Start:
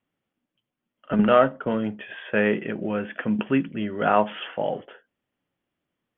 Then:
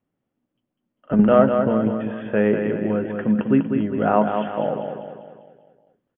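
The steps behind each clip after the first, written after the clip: tilt shelf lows +8 dB, about 1400 Hz; on a send: feedback echo 0.198 s, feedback 49%, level -6 dB; on the sum: gain -3 dB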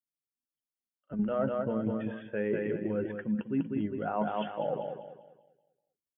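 per-bin expansion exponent 1.5; reverse; compressor 6:1, threshold -28 dBFS, peak gain reduction 16 dB; reverse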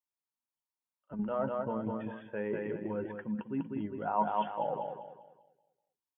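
bell 940 Hz +14 dB 0.48 oct; gain -5 dB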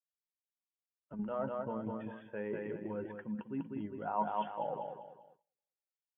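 gate -59 dBFS, range -22 dB; gain -4 dB

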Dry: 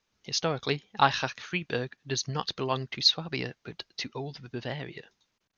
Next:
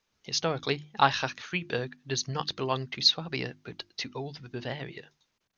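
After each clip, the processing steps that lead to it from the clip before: notches 50/100/150/200/250/300/350 Hz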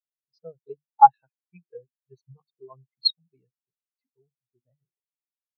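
spectral expander 4:1; gain +4 dB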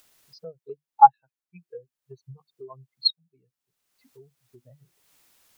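upward compressor, threshold -35 dBFS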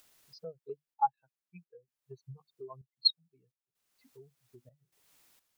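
step gate "xxxx.xx." 64 bpm -12 dB; gain -3.5 dB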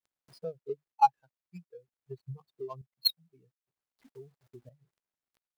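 median filter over 15 samples; gain +6 dB

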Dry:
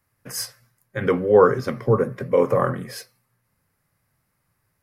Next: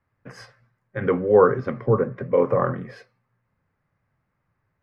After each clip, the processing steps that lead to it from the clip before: LPF 2100 Hz 12 dB/oct; gain -1 dB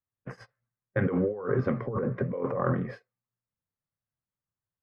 gate -41 dBFS, range -25 dB; high shelf 2900 Hz -9.5 dB; negative-ratio compressor -26 dBFS, ratio -1; gain -2.5 dB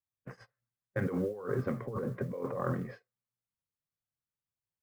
modulation noise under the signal 33 dB; gain -6 dB

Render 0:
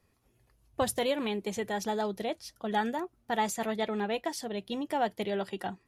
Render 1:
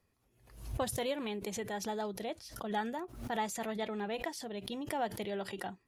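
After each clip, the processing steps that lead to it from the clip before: backwards sustainer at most 89 dB/s; gain -6 dB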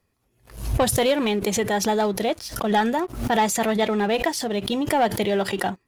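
sample leveller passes 2; gain +8.5 dB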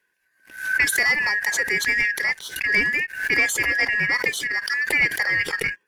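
four-band scrambler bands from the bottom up 2143

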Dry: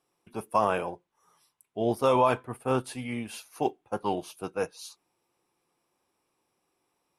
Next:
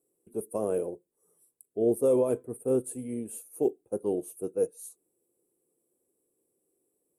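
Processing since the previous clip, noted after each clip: EQ curve 140 Hz 0 dB, 460 Hz +11 dB, 880 Hz -14 dB, 5100 Hz -17 dB, 8000 Hz +11 dB; gain -5.5 dB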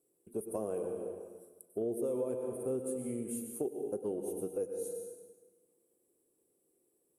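plate-style reverb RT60 1.3 s, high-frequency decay 0.85×, pre-delay 85 ms, DRR 6 dB; compressor 4:1, threshold -34 dBFS, peak gain reduction 14 dB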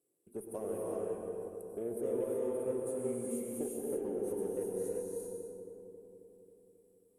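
added harmonics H 7 -45 dB, 8 -35 dB, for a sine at -23.5 dBFS; darkening echo 0.27 s, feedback 68%, low-pass 1300 Hz, level -7.5 dB; non-linear reverb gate 0.41 s rising, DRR -1.5 dB; gain -4.5 dB

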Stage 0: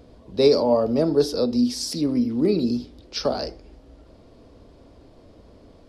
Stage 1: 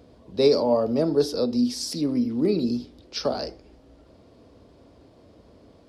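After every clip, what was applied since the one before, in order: HPF 68 Hz; gain -2 dB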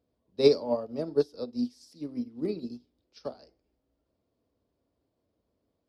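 upward expander 2.5:1, over -31 dBFS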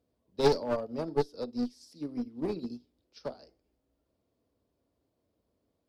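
one-sided clip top -31 dBFS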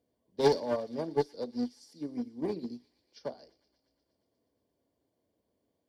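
notch comb 1300 Hz; thin delay 0.118 s, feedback 74%, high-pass 2300 Hz, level -18 dB

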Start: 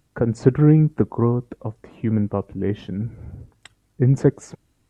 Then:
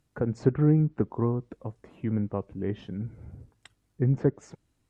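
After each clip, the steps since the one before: treble ducked by the level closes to 1800 Hz, closed at -11 dBFS; gain -7.5 dB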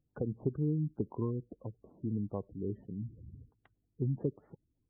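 LPF 1200 Hz 12 dB/oct; spectral gate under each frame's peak -20 dB strong; compressor 3:1, threshold -23 dBFS, peak gain reduction 6 dB; gain -6 dB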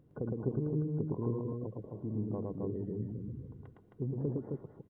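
per-bin compression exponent 0.6; on a send: loudspeakers at several distances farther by 38 m -2 dB, 91 m -3 dB; on the sum: gain -5 dB

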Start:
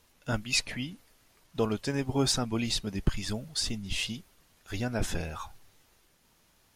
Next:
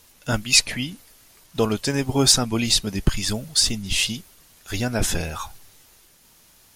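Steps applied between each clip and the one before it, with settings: high shelf 4200 Hz +9 dB; gain +7 dB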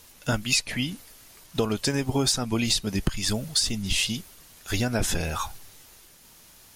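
compressor 6:1, threshold -23 dBFS, peak gain reduction 12 dB; gain +2 dB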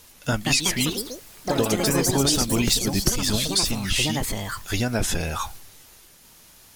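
echoes that change speed 0.239 s, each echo +4 st, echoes 3; gain +1.5 dB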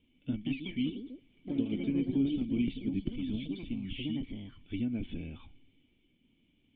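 vocal tract filter i; gain -2 dB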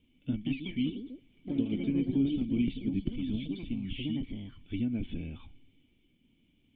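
tone controls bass +3 dB, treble +2 dB

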